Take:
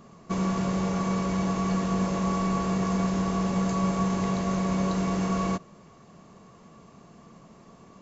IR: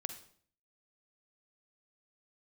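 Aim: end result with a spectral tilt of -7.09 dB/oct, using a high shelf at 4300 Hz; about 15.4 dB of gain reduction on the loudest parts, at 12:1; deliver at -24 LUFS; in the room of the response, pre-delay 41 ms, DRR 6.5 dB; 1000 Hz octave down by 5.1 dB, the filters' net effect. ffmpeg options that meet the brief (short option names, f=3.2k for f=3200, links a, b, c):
-filter_complex "[0:a]equalizer=f=1k:t=o:g=-6.5,highshelf=f=4.3k:g=4,acompressor=threshold=-39dB:ratio=12,asplit=2[a][b];[1:a]atrim=start_sample=2205,adelay=41[c];[b][c]afir=irnorm=-1:irlink=0,volume=-5.5dB[d];[a][d]amix=inputs=2:normalize=0,volume=17.5dB"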